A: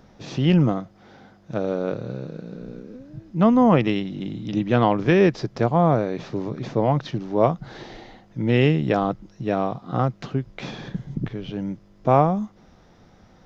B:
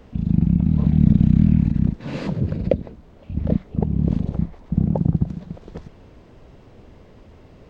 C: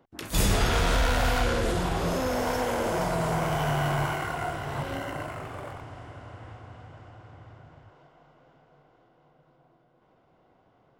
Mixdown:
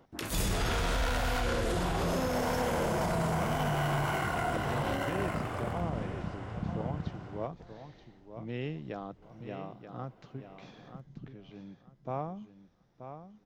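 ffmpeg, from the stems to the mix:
ffmpeg -i stem1.wav -i stem2.wav -i stem3.wav -filter_complex "[0:a]volume=-19dB,asplit=2[link_01][link_02];[link_02]volume=-10dB[link_03];[1:a]adelay=1850,volume=-17dB[link_04];[2:a]volume=2dB,asplit=3[link_05][link_06][link_07];[link_05]atrim=end=7.47,asetpts=PTS-STARTPTS,afade=type=out:start_time=7.466:duration=0.004:curve=hsin[link_08];[link_06]atrim=start=7.47:end=9.22,asetpts=PTS-STARTPTS,volume=0[link_09];[link_07]atrim=start=9.22,asetpts=PTS-STARTPTS,afade=type=in:duration=0.004:curve=hsin[link_10];[link_08][link_09][link_10]concat=n=3:v=0:a=1[link_11];[link_03]aecho=0:1:930|1860|2790|3720:1|0.22|0.0484|0.0106[link_12];[link_01][link_04][link_11][link_12]amix=inputs=4:normalize=0,alimiter=limit=-22.5dB:level=0:latency=1:release=56" out.wav

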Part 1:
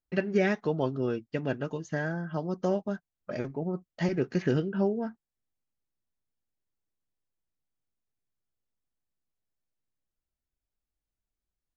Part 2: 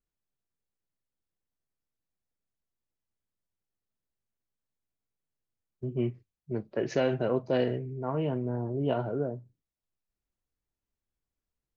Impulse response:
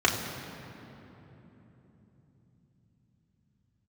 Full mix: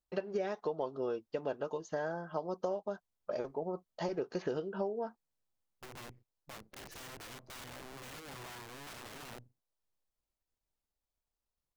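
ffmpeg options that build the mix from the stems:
-filter_complex "[0:a]equalizer=frequency=125:width_type=o:width=1:gain=-11,equalizer=frequency=250:width_type=o:width=1:gain=-6,equalizer=frequency=500:width_type=o:width=1:gain=6,equalizer=frequency=1000:width_type=o:width=1:gain=8,equalizer=frequency=2000:width_type=o:width=1:gain=-9,equalizer=frequency=4000:width_type=o:width=1:gain=4,volume=-4.5dB[link_01];[1:a]aeval=exprs='if(lt(val(0),0),0.251*val(0),val(0))':channel_layout=same,acompressor=threshold=-35dB:ratio=16,aeval=exprs='(mod(94.4*val(0)+1,2)-1)/94.4':channel_layout=same,volume=-3dB[link_02];[link_01][link_02]amix=inputs=2:normalize=0,acompressor=threshold=-31dB:ratio=10"

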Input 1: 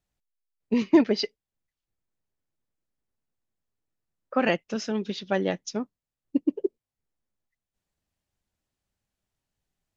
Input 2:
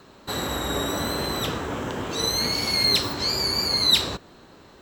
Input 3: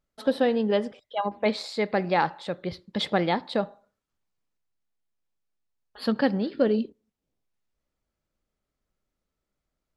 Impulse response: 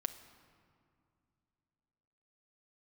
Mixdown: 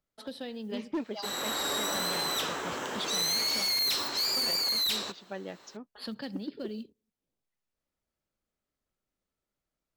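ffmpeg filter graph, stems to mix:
-filter_complex "[0:a]volume=-13.5dB[link_01];[1:a]highpass=frequency=700:poles=1,equalizer=frequency=6000:width=1.2:gain=3.5,dynaudnorm=framelen=300:gausssize=3:maxgain=7dB,adelay=950,volume=-8dB[link_02];[2:a]acrossover=split=160|3000[link_03][link_04][link_05];[link_04]acompressor=threshold=-47dB:ratio=2[link_06];[link_03][link_06][link_05]amix=inputs=3:normalize=0,acrusher=bits=9:mode=log:mix=0:aa=0.000001,volume=-4dB[link_07];[link_01][link_02][link_07]amix=inputs=3:normalize=0,asoftclip=type=hard:threshold=-26.5dB,lowshelf=frequency=100:gain=-6.5"

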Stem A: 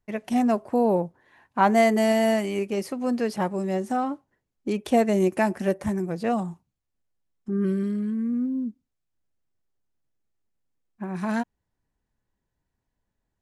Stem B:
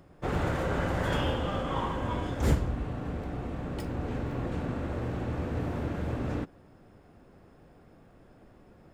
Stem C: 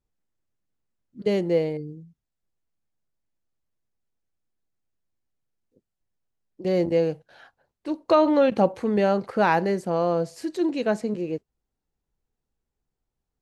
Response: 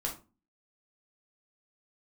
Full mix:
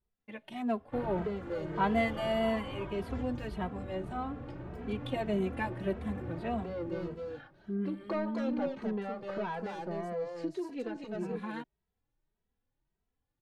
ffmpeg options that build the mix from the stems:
-filter_complex "[0:a]highshelf=frequency=4500:width_type=q:width=3:gain=-8,adelay=200,volume=-8dB[link_01];[1:a]asoftclip=type=tanh:threshold=-24dB,adelay=700,volume=-4.5dB,asplit=2[link_02][link_03];[link_03]volume=-14dB[link_04];[2:a]asoftclip=type=tanh:threshold=-19.5dB,volume=0dB,asplit=2[link_05][link_06];[link_06]volume=-14dB[link_07];[link_02][link_05]amix=inputs=2:normalize=0,lowpass=2900,acompressor=threshold=-33dB:ratio=5,volume=0dB[link_08];[link_04][link_07]amix=inputs=2:normalize=0,aecho=0:1:251:1[link_09];[link_01][link_08][link_09]amix=inputs=3:normalize=0,asplit=2[link_10][link_11];[link_11]adelay=2.7,afreqshift=1.7[link_12];[link_10][link_12]amix=inputs=2:normalize=1"

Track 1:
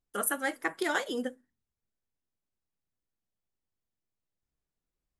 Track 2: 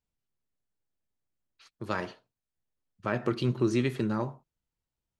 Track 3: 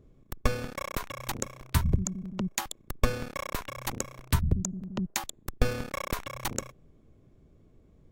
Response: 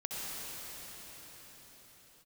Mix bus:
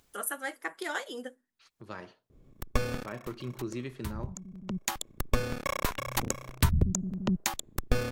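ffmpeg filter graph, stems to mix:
-filter_complex "[0:a]highpass=frequency=400:poles=1,volume=-10dB[link_01];[1:a]volume=-10.5dB,asplit=2[link_02][link_03];[2:a]adelay=2300,volume=-3dB[link_04];[link_03]apad=whole_len=459309[link_05];[link_04][link_05]sidechaincompress=threshold=-50dB:ratio=10:attack=5.4:release=761[link_06];[link_01][link_06]amix=inputs=2:normalize=0,acontrast=66,alimiter=limit=-11.5dB:level=0:latency=1:release=325,volume=0dB[link_07];[link_02][link_07]amix=inputs=2:normalize=0,acompressor=mode=upward:threshold=-48dB:ratio=2.5"

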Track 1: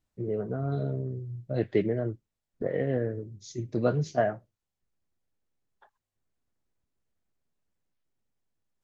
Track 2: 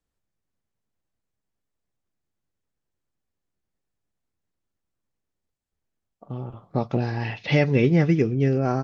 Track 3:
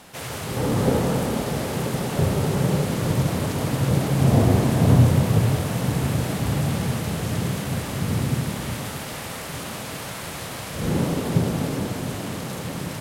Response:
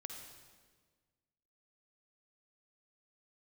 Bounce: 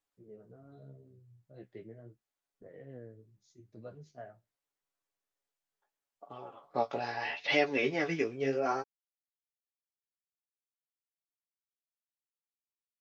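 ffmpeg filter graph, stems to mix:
-filter_complex "[0:a]volume=-19dB[link_01];[1:a]highpass=540,aecho=1:1:7.1:0.48,volume=0.5dB[link_02];[link_01][link_02]amix=inputs=2:normalize=0,flanger=delay=9.6:depth=8.4:regen=20:speed=0.79:shape=sinusoidal"

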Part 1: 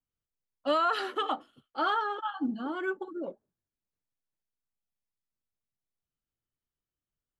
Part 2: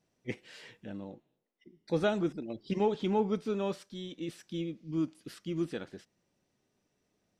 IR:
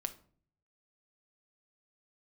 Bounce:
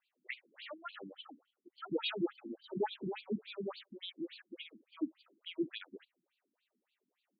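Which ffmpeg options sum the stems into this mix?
-filter_complex "[0:a]equalizer=frequency=560:width=0.45:gain=-4,volume=-11dB[link_01];[1:a]lowpass=4500,asoftclip=type=hard:threshold=-21.5dB,crystalizer=i=5:c=0,volume=-1dB[link_02];[link_01][link_02]amix=inputs=2:normalize=0,afftfilt=real='re*between(b*sr/1024,240*pow(3400/240,0.5+0.5*sin(2*PI*3.5*pts/sr))/1.41,240*pow(3400/240,0.5+0.5*sin(2*PI*3.5*pts/sr))*1.41)':imag='im*between(b*sr/1024,240*pow(3400/240,0.5+0.5*sin(2*PI*3.5*pts/sr))/1.41,240*pow(3400/240,0.5+0.5*sin(2*PI*3.5*pts/sr))*1.41)':win_size=1024:overlap=0.75"

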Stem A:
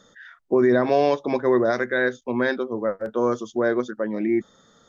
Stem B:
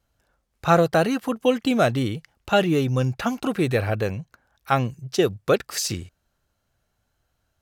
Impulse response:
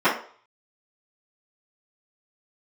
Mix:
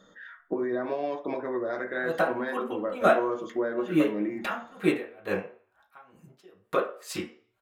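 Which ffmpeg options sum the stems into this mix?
-filter_complex "[0:a]acompressor=threshold=-26dB:ratio=6,volume=-4.5dB,asplit=2[link_01][link_02];[link_02]volume=-20dB[link_03];[1:a]lowshelf=frequency=430:gain=-10.5,acompressor=threshold=-22dB:ratio=3,aeval=exprs='val(0)*pow(10,-35*(0.5-0.5*cos(2*PI*2.2*n/s))/20)':channel_layout=same,adelay=1250,volume=-3.5dB,asplit=2[link_04][link_05];[link_05]volume=-11.5dB[link_06];[2:a]atrim=start_sample=2205[link_07];[link_03][link_06]amix=inputs=2:normalize=0[link_08];[link_08][link_07]afir=irnorm=-1:irlink=0[link_09];[link_01][link_04][link_09]amix=inputs=3:normalize=0,equalizer=frequency=5600:width_type=o:width=0.38:gain=-11"

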